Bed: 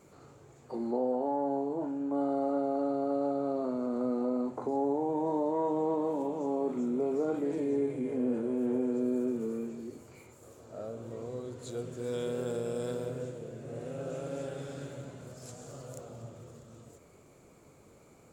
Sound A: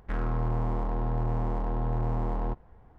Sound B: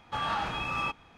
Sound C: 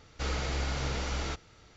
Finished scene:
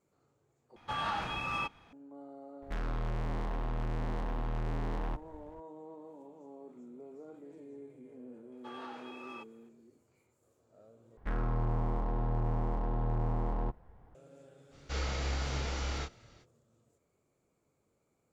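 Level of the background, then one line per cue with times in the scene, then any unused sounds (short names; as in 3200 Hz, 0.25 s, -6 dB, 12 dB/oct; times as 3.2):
bed -19 dB
0.76 replace with B -3.5 dB
2.62 add A -10.5 dB + sample leveller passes 3
8.52 add B -17 dB + resonant high-pass 380 Hz
11.17 replace with A -3.5 dB
14.7 add C -4.5 dB, fades 0.05 s + doubler 28 ms -4.5 dB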